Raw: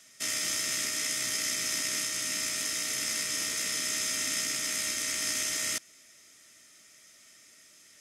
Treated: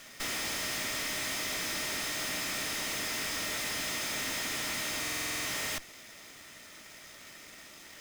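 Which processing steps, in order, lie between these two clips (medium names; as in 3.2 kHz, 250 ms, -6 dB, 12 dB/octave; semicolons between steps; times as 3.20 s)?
square wave that keeps the level; valve stage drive 41 dB, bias 0.75; in parallel at -4 dB: sample-rate reducer 10 kHz; on the sum: buffer glitch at 5.00 s, samples 2048, times 9; trim +5.5 dB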